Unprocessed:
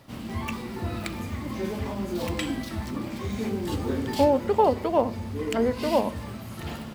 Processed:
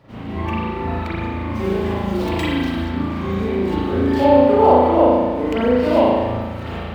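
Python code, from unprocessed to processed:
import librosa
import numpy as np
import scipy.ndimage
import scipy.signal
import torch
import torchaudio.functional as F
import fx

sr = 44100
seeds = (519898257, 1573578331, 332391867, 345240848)

y = scipy.ndimage.median_filter(x, 5, mode='constant')
y = fx.high_shelf(y, sr, hz=4200.0, db=fx.steps((0.0, -9.5), (1.54, 3.5), (2.84, -4.0)))
y = fx.rev_spring(y, sr, rt60_s=1.4, pass_ms=(36,), chirp_ms=25, drr_db=-9.0)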